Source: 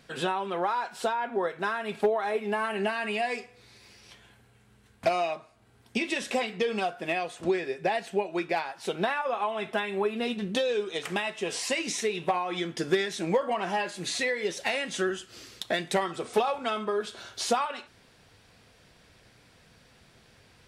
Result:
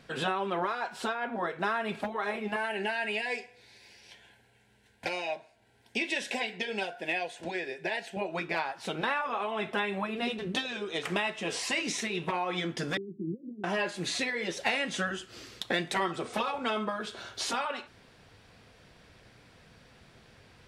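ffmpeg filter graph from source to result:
-filter_complex "[0:a]asettb=1/sr,asplit=3[a][b][c];[a]atrim=end=2.564[d];[b]atrim=start=2.56:end=8.17,asetpts=PTS-STARTPTS,afade=t=in:d=0.004:c=qsin,afade=t=out:st=5.606:d=0.004:c=qsin,asuperstop=centerf=1200:order=4:qfactor=2.8,lowshelf=f=380:g=-11[e];[c]atrim=start=8.166[f];[d][e]acrossfade=d=0.004:c1=hsin:c2=qsin[g];[g][f]acrossfade=d=0.004:c1=qsin:c2=hsin,asettb=1/sr,asplit=3[h][i][j];[h]atrim=end=12.974[k];[i]atrim=start=12.97:end=13.64,asetpts=PTS-STARTPTS,afade=t=in:d=0.004:c=qsin,afade=t=out:st=0.666:d=0.004:c=qsin,acompressor=threshold=-29dB:ratio=5:attack=3.2:release=140:knee=1:detection=peak,asuperpass=centerf=220:order=12:qfactor=0.89[l];[j]atrim=start=13.636[m];[k][l]acrossfade=d=0.004:c1=hsin:c2=qsin[n];[n][m]acrossfade=d=0.004:c1=qsin:c2=hsin,highshelf=f=5.2k:g=-7.5,afftfilt=real='re*lt(hypot(re,im),0.251)':imag='im*lt(hypot(re,im),0.251)':win_size=1024:overlap=0.75,volume=2dB"

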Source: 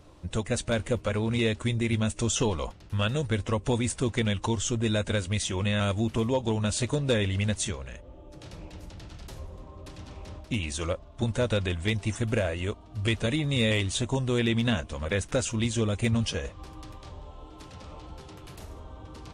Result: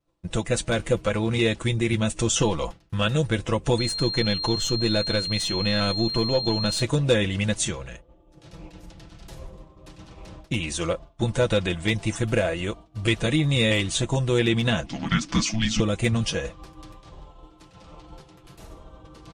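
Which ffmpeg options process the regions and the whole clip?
-filter_complex "[0:a]asettb=1/sr,asplit=3[a][b][c];[a]atrim=end=3.784[d];[b]atrim=start=3.78:end=6.82,asetpts=PTS-STARTPTS,afade=t=in:d=0.004:c=qsin,afade=t=out:st=3.036:d=0.004:c=qsin,aeval=exprs='if(lt(val(0),0),0.708*val(0),val(0))':c=same,equalizer=f=7.2k:t=o:w=0.81:g=-4.5,aeval=exprs='val(0)+0.02*sin(2*PI*4200*n/s)':c=same[e];[c]atrim=start=6.816[f];[d][e]acrossfade=d=0.004:c1=hsin:c2=qsin[g];[g][f]acrossfade=d=0.004:c1=qsin:c2=hsin,asettb=1/sr,asplit=3[h][i][j];[h]atrim=end=14.864[k];[i]atrim=start=14.86:end=15.8,asetpts=PTS-STARTPTS,afade=t=in:d=0.004:c=qsin,afade=t=out:st=0.936:d=0.004:c=qsin,lowpass=f=5.2k:t=q:w=2.1,afreqshift=-330[l];[j]atrim=start=15.796[m];[k][l]acrossfade=d=0.004:c1=hsin:c2=qsin[n];[n][m]acrossfade=d=0.004:c1=qsin:c2=hsin,agate=range=-33dB:threshold=-37dB:ratio=3:detection=peak,aecho=1:1:6:0.53,volume=3.5dB"

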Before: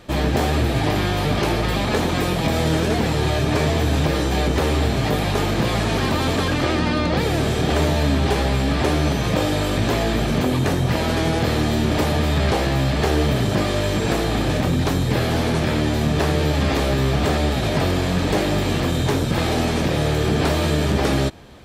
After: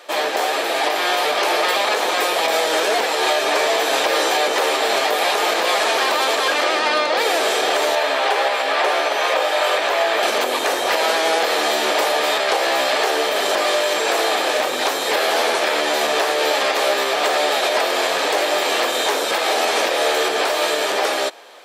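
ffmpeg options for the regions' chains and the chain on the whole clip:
-filter_complex "[0:a]asettb=1/sr,asplit=3[a][b][c];[a]atrim=end=7.954[d];[b]atrim=start=7.95:end=10.23,asetpts=PTS-STARTPTS,afade=t=in:d=0.004:c=qsin,afade=t=out:st=2.276:d=0.004:c=qsin,bass=f=250:g=-13,treble=f=4k:g=-8,bandreject=f=50:t=h:w=6,bandreject=f=100:t=h:w=6,bandreject=f=150:t=h:w=6,bandreject=f=200:t=h:w=6,bandreject=f=250:t=h:w=6,bandreject=f=300:t=h:w=6,bandreject=f=350:t=h:w=6,bandreject=f=400:t=h:w=6,bandreject=f=450:t=h:w=6,bandreject=f=500:t=h:w=6[e];[c]atrim=start=10.226[f];[d][e]acrossfade=d=0.004:c1=hsin:c2=qsin[g];[g][f]acrossfade=d=0.004:c1=qsin:c2=hsin,dynaudnorm=f=310:g=9:m=11.5dB,highpass=f=490:w=0.5412,highpass=f=490:w=1.3066,alimiter=limit=-14.5dB:level=0:latency=1:release=258,volume=6dB"

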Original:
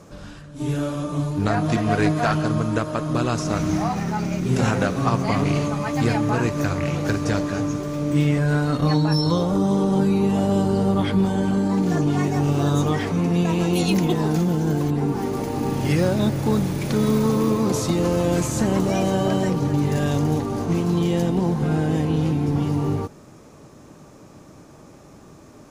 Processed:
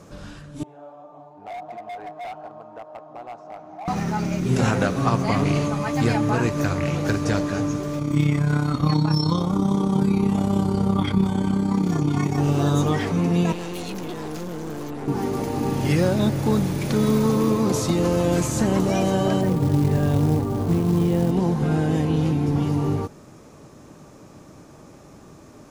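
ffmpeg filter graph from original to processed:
-filter_complex "[0:a]asettb=1/sr,asplit=3[a][b][c];[a]atrim=end=0.634[d];[b]atrim=start=0.63:end=3.88,asetpts=PTS-STARTPTS,afade=t=in:d=0.004:c=qsin,afade=t=out:st=3.246:d=0.004:c=qsin,bandpass=f=760:t=q:w=7.1,asoftclip=type=hard:threshold=-31dB[e];[c]atrim=start=3.876[f];[d][e]acrossfade=d=0.004:c1=hsin:c2=qsin[g];[g][f]acrossfade=d=0.004:c1=qsin:c2=hsin,asettb=1/sr,asplit=3[h][i][j];[h]atrim=end=7.994[k];[i]atrim=start=7.99:end=12.38,asetpts=PTS-STARTPTS,afade=t=in:d=0.004:c=qsin,afade=t=out:st=4.386:d=0.004:c=qsin,highpass=42,tremolo=f=33:d=0.621,aecho=1:1:0.9:0.47,atrim=end_sample=193599[l];[j]atrim=start=12.376[m];[k][l]acrossfade=d=0.004:c1=hsin:c2=qsin[n];[n][m]acrossfade=d=0.004:c1=qsin:c2=hsin,asettb=1/sr,asplit=3[o][p][q];[o]atrim=end=13.524[r];[p]atrim=start=13.52:end=15.08,asetpts=PTS-STARTPTS,afade=t=in:d=0.004:c=qsin,afade=t=out:st=1.556:d=0.004:c=qsin,highpass=110,acrossover=split=230|1400[s][t][u];[s]acompressor=threshold=-35dB:ratio=4[v];[t]acompressor=threshold=-24dB:ratio=4[w];[u]acompressor=threshold=-31dB:ratio=4[x];[v][w][x]amix=inputs=3:normalize=0,aeval=exprs='(tanh(25.1*val(0)+0.6)-tanh(0.6))/25.1':c=same[y];[q]atrim=start=15.076[z];[r][y]acrossfade=d=0.004:c1=hsin:c2=qsin[aa];[aa][z]acrossfade=d=0.004:c1=qsin:c2=hsin,asettb=1/sr,asplit=3[ab][ac][ad];[ab]atrim=end=19.414[ae];[ac]atrim=start=19.41:end=21.31,asetpts=PTS-STARTPTS,afade=t=in:d=0.004:c=qsin,afade=t=out:st=1.896:d=0.004:c=qsin,lowpass=f=1.2k:p=1,equalizer=f=87:w=1.5:g=6.5,acrusher=bits=6:mode=log:mix=0:aa=0.000001[af];[ad]atrim=start=21.306[ag];[ae][af]acrossfade=d=0.004:c1=hsin:c2=qsin[ah];[ah][ag]acrossfade=d=0.004:c1=qsin:c2=hsin"

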